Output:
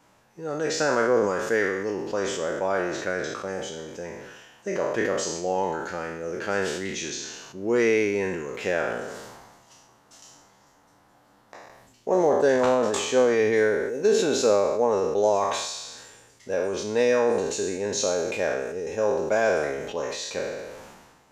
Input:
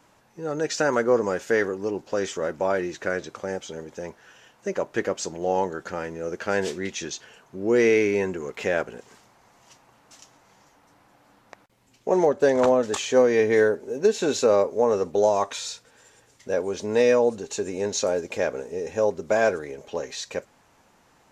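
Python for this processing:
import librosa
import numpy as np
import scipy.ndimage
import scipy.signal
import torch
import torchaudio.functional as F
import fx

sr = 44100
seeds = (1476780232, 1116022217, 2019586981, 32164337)

y = fx.spec_trails(x, sr, decay_s=0.79)
y = fx.peak_eq(y, sr, hz=2400.0, db=-6.0, octaves=0.35, at=(8.92, 12.5))
y = fx.sustainer(y, sr, db_per_s=38.0)
y = y * librosa.db_to_amplitude(-3.0)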